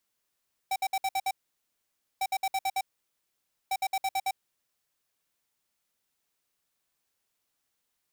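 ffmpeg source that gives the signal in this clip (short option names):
-f lavfi -i "aevalsrc='0.0398*(2*lt(mod(772*t,1),0.5)-1)*clip(min(mod(mod(t,1.5),0.11),0.05-mod(mod(t,1.5),0.11))/0.005,0,1)*lt(mod(t,1.5),0.66)':d=4.5:s=44100"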